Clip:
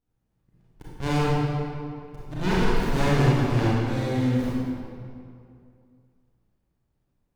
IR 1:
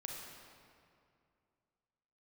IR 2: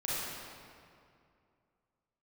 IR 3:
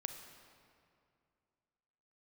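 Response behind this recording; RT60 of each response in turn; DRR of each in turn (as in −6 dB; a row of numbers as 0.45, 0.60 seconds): 2; 2.4, 2.4, 2.4 seconds; −1.0, −8.5, 6.5 decibels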